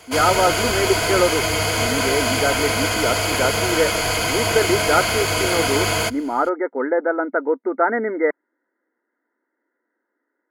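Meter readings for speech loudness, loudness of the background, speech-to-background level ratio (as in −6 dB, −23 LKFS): −22.5 LKFS, −19.5 LKFS, −3.0 dB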